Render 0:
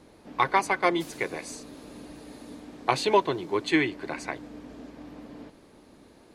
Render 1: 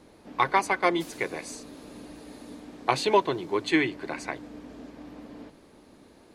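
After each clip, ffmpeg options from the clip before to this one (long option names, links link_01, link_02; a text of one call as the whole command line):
ffmpeg -i in.wav -af "bandreject=frequency=50:width_type=h:width=6,bandreject=frequency=100:width_type=h:width=6,bandreject=frequency=150:width_type=h:width=6" out.wav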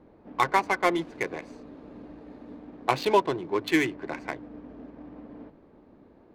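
ffmpeg -i in.wav -af "adynamicsmooth=sensitivity=4.5:basefreq=1400" out.wav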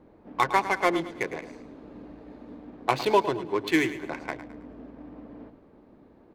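ffmpeg -i in.wav -af "aecho=1:1:107|214|321|428:0.224|0.0851|0.0323|0.0123" out.wav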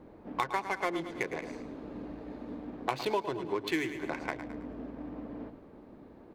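ffmpeg -i in.wav -af "acompressor=threshold=-34dB:ratio=3,volume=2.5dB" out.wav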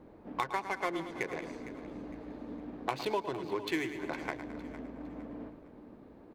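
ffmpeg -i in.wav -af "aecho=1:1:458|916|1374:0.178|0.0587|0.0194,volume=-2dB" out.wav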